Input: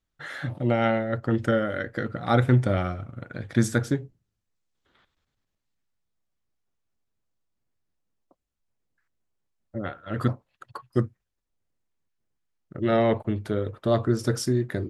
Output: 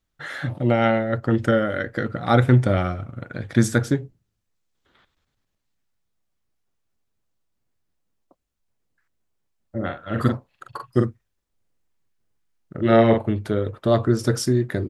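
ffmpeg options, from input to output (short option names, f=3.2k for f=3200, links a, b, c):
-filter_complex "[0:a]asplit=3[a][b][c];[a]afade=t=out:st=9.77:d=0.02[d];[b]asplit=2[e][f];[f]adelay=44,volume=-5dB[g];[e][g]amix=inputs=2:normalize=0,afade=t=in:st=9.77:d=0.02,afade=t=out:st=13.3:d=0.02[h];[c]afade=t=in:st=13.3:d=0.02[i];[d][h][i]amix=inputs=3:normalize=0,volume=4dB"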